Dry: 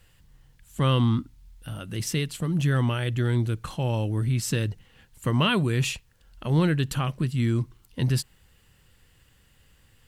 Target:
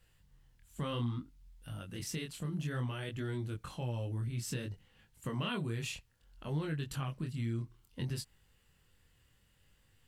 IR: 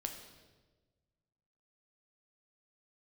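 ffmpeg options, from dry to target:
-af "flanger=delay=19.5:depth=7.1:speed=0.6,acompressor=threshold=-29dB:ratio=2,volume=-6.5dB"

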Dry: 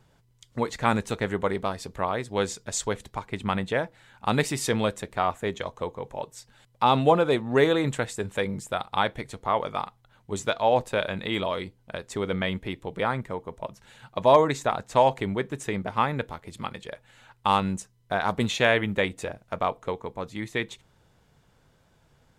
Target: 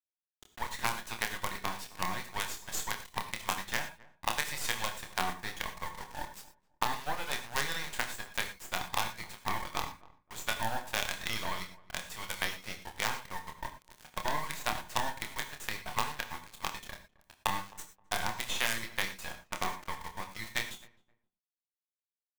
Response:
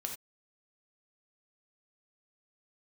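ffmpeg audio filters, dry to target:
-filter_complex "[0:a]highpass=frequency=870:width=0.5412,highpass=frequency=870:width=1.3066,highshelf=frequency=2800:gain=-8,bandreject=frequency=1300:width=5.1,aecho=1:1:5.5:0.34,acompressor=threshold=-31dB:ratio=20,acrusher=bits=5:dc=4:mix=0:aa=0.000001,asplit=2[link_01][link_02];[link_02]adelay=263,lowpass=frequency=1100:poles=1,volume=-20dB,asplit=2[link_03][link_04];[link_04]adelay=263,lowpass=frequency=1100:poles=1,volume=0.24[link_05];[link_01][link_03][link_05]amix=inputs=3:normalize=0,asplit=2[link_06][link_07];[1:a]atrim=start_sample=2205,adelay=27[link_08];[link_07][link_08]afir=irnorm=-1:irlink=0,volume=-4.5dB[link_09];[link_06][link_09]amix=inputs=2:normalize=0,volume=4dB"

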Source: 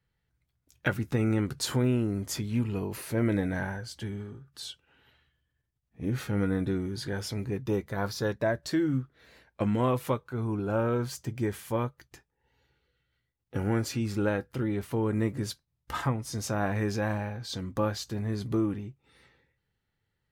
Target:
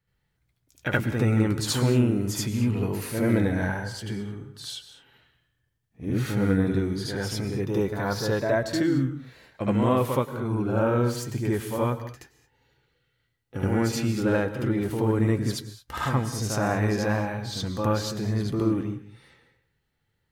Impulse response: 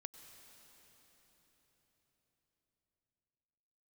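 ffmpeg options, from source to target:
-filter_complex "[0:a]asplit=2[link_01][link_02];[1:a]atrim=start_sample=2205,afade=type=out:start_time=0.28:duration=0.01,atrim=end_sample=12789,adelay=74[link_03];[link_02][link_03]afir=irnorm=-1:irlink=0,volume=10.5dB[link_04];[link_01][link_04]amix=inputs=2:normalize=0,volume=-1.5dB"

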